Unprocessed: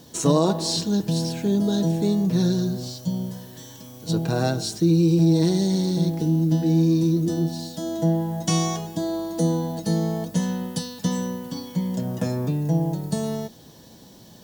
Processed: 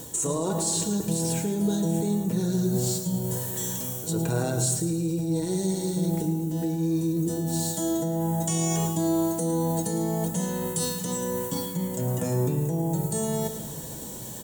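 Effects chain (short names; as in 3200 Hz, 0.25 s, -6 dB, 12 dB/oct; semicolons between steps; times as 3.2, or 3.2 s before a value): resonant high shelf 6300 Hz +7.5 dB, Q 3; limiter -18 dBFS, peak gain reduction 11.5 dB; reverse; compressor, threshold -31 dBFS, peak gain reduction 9.5 dB; reverse; feedback echo 0.11 s, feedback 47%, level -11.5 dB; reverb RT60 1.4 s, pre-delay 16 ms, DRR 10 dB; gain +7 dB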